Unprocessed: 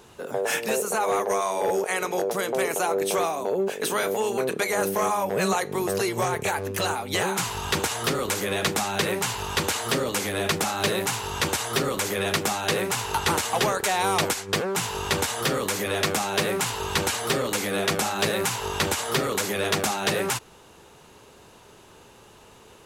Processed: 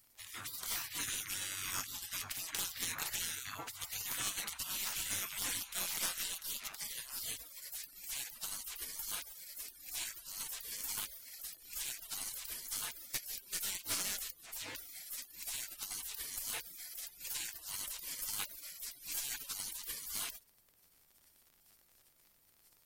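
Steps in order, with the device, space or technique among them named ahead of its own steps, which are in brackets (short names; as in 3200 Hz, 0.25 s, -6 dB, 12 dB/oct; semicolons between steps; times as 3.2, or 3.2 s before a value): spectral gate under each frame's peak -30 dB weak; 18.96–19.49 comb 6.9 ms, depth 66%; record under a worn stylus (tracing distortion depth 0.021 ms; crackle 63/s -55 dBFS; pink noise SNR 35 dB); gain +4.5 dB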